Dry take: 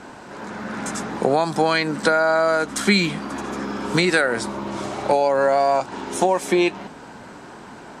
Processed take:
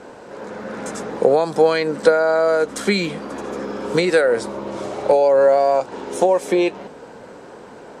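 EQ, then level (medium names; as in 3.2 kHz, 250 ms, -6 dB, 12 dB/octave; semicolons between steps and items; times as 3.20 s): peaking EQ 490 Hz +13 dB 0.61 oct; -3.5 dB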